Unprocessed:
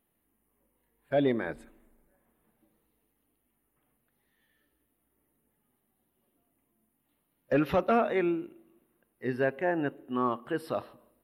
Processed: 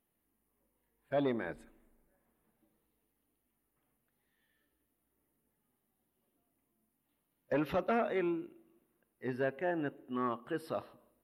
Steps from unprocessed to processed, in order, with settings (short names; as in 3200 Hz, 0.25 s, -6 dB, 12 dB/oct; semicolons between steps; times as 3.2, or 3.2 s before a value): core saturation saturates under 440 Hz; gain -5 dB